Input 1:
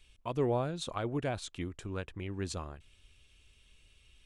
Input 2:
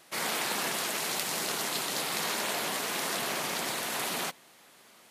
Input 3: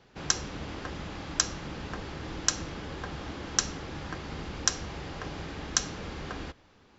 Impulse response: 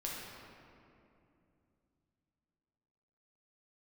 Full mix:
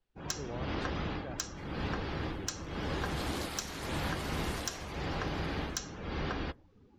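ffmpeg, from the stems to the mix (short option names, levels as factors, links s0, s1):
-filter_complex "[0:a]volume=0.299,asplit=2[s0][s1];[1:a]acompressor=threshold=0.02:ratio=5,adelay=1450,volume=0.668,afade=t=in:st=2.73:d=0.58:silence=0.421697,afade=t=out:st=4.71:d=0.34:silence=0.446684[s2];[2:a]dynaudnorm=f=140:g=3:m=4.22,volume=0.398[s3];[s1]apad=whole_len=288986[s4];[s2][s4]sidechaincompress=threshold=0.00447:ratio=8:attack=16:release=1060[s5];[s0][s5][s3]amix=inputs=3:normalize=0,afftdn=nr=20:nf=-48,asoftclip=type=tanh:threshold=0.126,alimiter=limit=0.0708:level=0:latency=1:release=409"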